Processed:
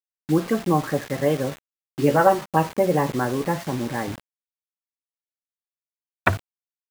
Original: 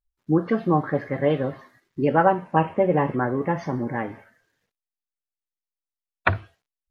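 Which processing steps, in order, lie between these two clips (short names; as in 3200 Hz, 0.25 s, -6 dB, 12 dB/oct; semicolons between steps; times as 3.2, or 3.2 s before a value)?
4.07–6.29 bell 130 Hz +10 dB 2.7 oct; bit-crush 6-bit; 1.5–2.46 doubler 14 ms -5 dB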